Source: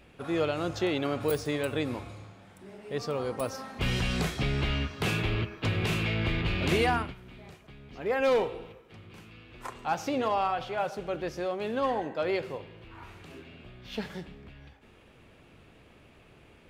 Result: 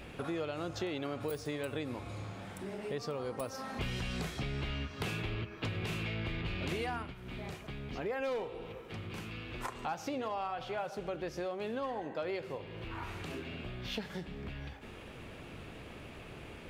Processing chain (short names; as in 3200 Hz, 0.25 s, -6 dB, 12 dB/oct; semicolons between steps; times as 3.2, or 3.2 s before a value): compressor 4:1, threshold -46 dBFS, peak gain reduction 19.5 dB; gain +8 dB